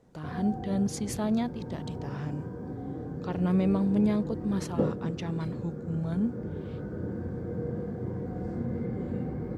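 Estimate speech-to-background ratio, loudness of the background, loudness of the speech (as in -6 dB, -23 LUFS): 5.0 dB, -36.0 LUFS, -31.0 LUFS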